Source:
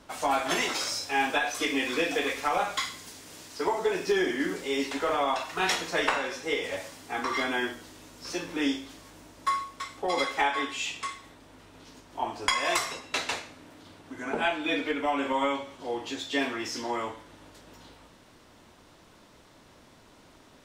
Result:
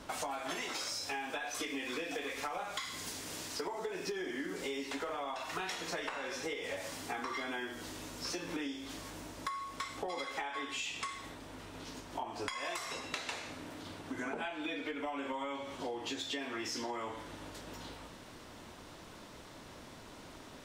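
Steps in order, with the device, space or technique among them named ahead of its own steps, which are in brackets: serial compression, peaks first (compressor, threshold -35 dBFS, peak gain reduction 13.5 dB; compressor 2.5:1, threshold -42 dBFS, peak gain reduction 8 dB); gain +4 dB

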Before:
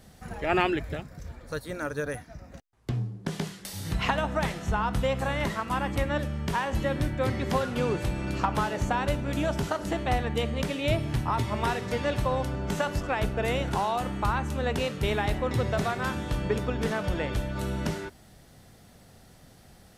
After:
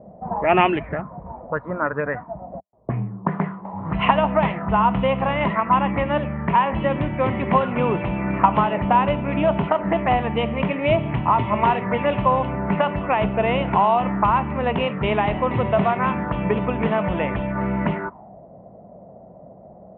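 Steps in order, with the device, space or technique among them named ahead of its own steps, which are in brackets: envelope filter bass rig (envelope low-pass 550–3000 Hz up, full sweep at -24.5 dBFS; speaker cabinet 70–2200 Hz, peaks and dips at 88 Hz -7 dB, 190 Hz +8 dB, 660 Hz +6 dB, 1000 Hz +9 dB, 1600 Hz -7 dB); gain +4.5 dB

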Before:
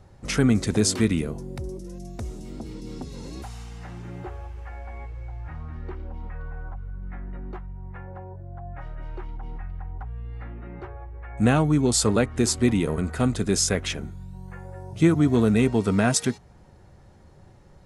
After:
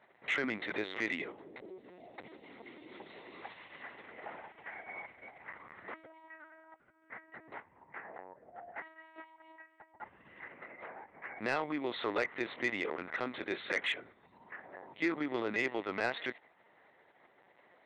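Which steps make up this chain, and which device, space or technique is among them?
talking toy (LPC vocoder at 8 kHz pitch kept; HPF 550 Hz 12 dB/oct; bell 2000 Hz +11 dB 0.33 oct; soft clip -17.5 dBFS, distortion -16 dB); gain -4.5 dB

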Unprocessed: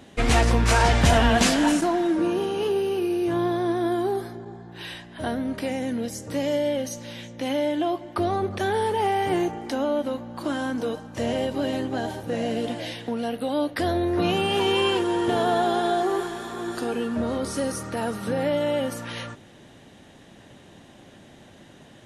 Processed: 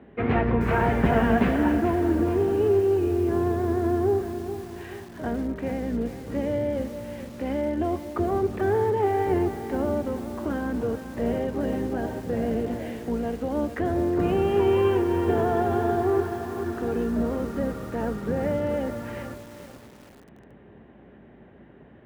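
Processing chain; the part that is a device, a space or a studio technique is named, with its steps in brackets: sub-octave bass pedal (octaver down 2 oct, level +2 dB; speaker cabinet 65–2200 Hz, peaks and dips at 71 Hz -8 dB, 220 Hz +5 dB, 410 Hz +8 dB); low shelf 65 Hz +3.5 dB; lo-fi delay 0.432 s, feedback 55%, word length 6-bit, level -10.5 dB; gain -4 dB

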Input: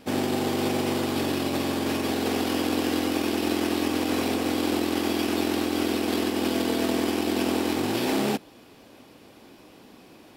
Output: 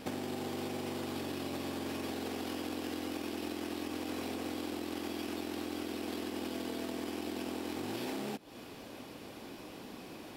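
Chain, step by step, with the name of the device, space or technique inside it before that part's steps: serial compression, peaks first (compressor, threshold -34 dBFS, peak gain reduction 12.5 dB; compressor 2:1, threshold -41 dBFS, peak gain reduction 5.5 dB); gain +2.5 dB

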